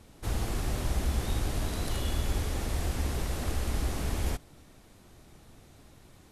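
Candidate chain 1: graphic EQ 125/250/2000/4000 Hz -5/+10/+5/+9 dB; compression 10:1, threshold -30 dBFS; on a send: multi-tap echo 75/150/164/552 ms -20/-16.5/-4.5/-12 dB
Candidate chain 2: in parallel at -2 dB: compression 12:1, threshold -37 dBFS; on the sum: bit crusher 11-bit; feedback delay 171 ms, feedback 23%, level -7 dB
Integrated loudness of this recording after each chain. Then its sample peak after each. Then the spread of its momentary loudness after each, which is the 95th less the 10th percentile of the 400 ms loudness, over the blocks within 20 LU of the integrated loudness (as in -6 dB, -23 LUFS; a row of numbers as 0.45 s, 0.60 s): -34.5 LUFS, -31.0 LUFS; -19.5 dBFS, -15.0 dBFS; 17 LU, 20 LU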